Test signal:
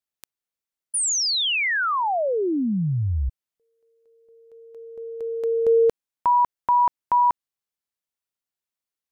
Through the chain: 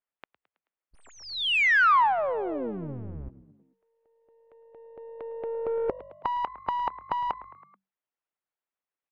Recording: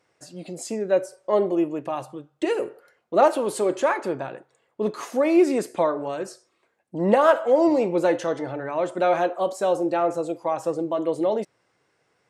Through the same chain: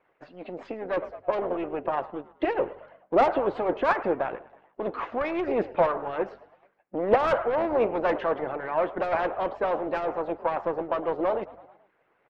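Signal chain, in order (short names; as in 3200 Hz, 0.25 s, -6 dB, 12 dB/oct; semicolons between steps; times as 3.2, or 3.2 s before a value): half-wave gain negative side -7 dB; LPF 3100 Hz 24 dB/oct; frequency-shifting echo 0.108 s, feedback 54%, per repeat +48 Hz, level -19.5 dB; overdrive pedal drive 19 dB, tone 1000 Hz, clips at -5 dBFS; harmonic-percussive split harmonic -14 dB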